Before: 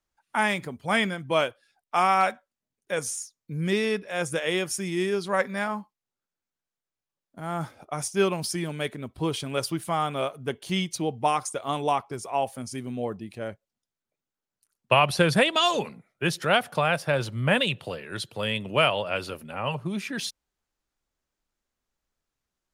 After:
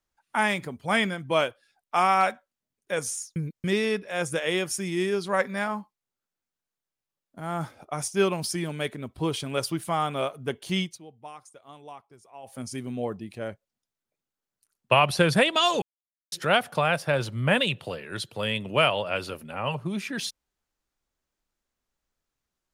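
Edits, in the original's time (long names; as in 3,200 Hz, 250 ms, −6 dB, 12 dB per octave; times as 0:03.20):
0:03.36–0:03.64: reverse
0:10.81–0:12.60: duck −19 dB, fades 0.17 s
0:15.82–0:16.32: silence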